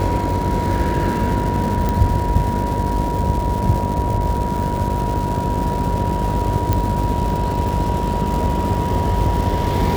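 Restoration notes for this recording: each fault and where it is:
buzz 50 Hz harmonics 14 -24 dBFS
crackle 430 per s -25 dBFS
whine 960 Hz -23 dBFS
1.89 s: pop
6.73 s: pop -5 dBFS

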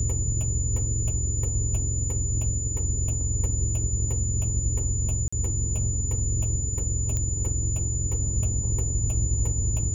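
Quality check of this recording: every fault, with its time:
whine 7 kHz -30 dBFS
5.28–5.33 s: dropout 45 ms
7.17 s: pop -16 dBFS

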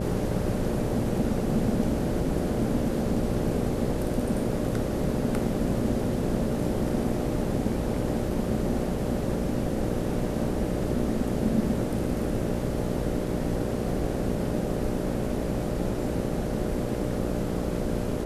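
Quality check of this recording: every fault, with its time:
buzz 60 Hz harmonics 10 -31 dBFS

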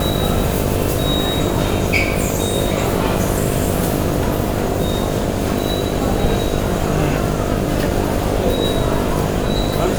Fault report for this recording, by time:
buzz 50 Hz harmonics 14 -22 dBFS

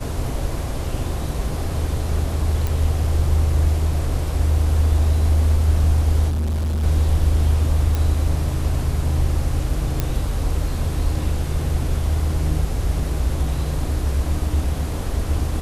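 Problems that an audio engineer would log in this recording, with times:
2.67 s: pop
6.28–6.84 s: clipped -19 dBFS
7.95 s: pop
10.00 s: pop -7 dBFS

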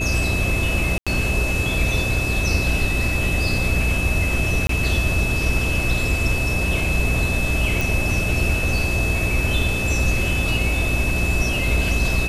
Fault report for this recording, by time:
hum 60 Hz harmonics 6 -25 dBFS
whine 2.6 kHz -24 dBFS
0.98–1.07 s: dropout 86 ms
4.67–4.69 s: dropout 23 ms
7.81 s: pop

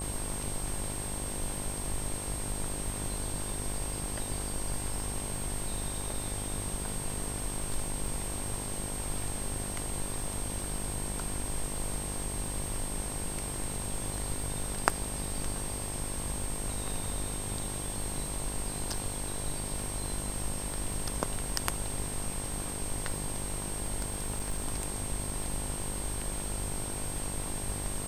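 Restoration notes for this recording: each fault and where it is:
buzz 50 Hz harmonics 22 -40 dBFS
crackle 89 per s -41 dBFS
whine 8.5 kHz -38 dBFS
24.02–24.66 s: clipped -27 dBFS

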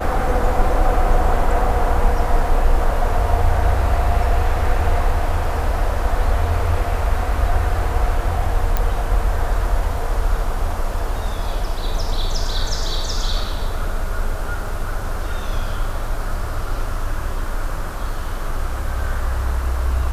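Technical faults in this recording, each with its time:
8.77 s: pop -6 dBFS
14.68 s: dropout 3 ms

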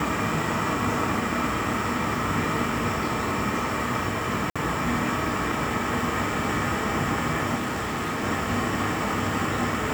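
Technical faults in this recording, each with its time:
4.50–4.56 s: dropout 56 ms
7.55–8.24 s: clipped -24.5 dBFS

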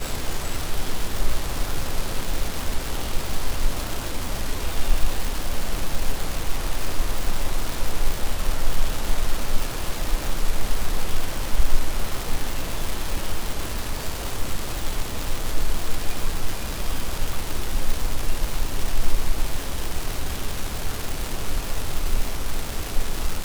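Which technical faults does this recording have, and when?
crackle 390 per s -22 dBFS

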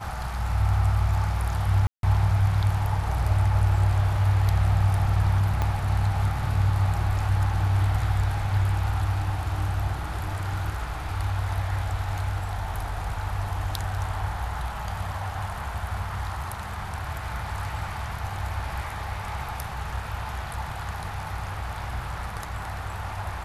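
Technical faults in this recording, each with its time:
1.87–2.03 s: dropout 162 ms
5.62 s: pop -13 dBFS

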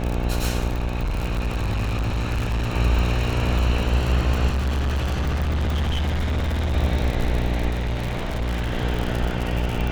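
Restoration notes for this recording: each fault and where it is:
buzz 60 Hz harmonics 15 -25 dBFS
crackle 80 per s -23 dBFS
0.67–2.74 s: clipped -20 dBFS
4.48–6.75 s: clipped -19.5 dBFS
7.69–8.72 s: clipped -21 dBFS

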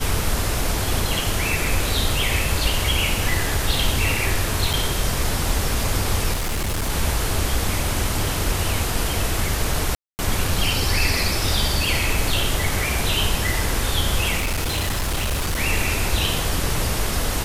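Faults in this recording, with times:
4.73–4.74 s: dropout 5.7 ms
6.33–6.90 s: clipped -20 dBFS
9.95–10.19 s: dropout 239 ms
14.37–15.59 s: clipped -19 dBFS

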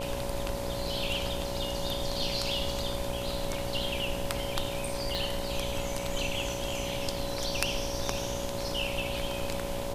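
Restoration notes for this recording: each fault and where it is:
buzz 60 Hz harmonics 17 -38 dBFS
whine 560 Hz -36 dBFS
5.15 s: pop

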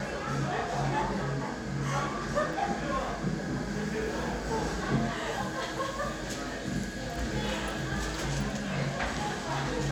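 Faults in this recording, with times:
2.53 s: dropout 3.1 ms

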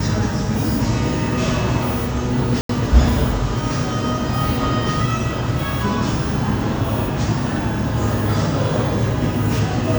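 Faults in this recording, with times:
2.61–2.69 s: dropout 83 ms

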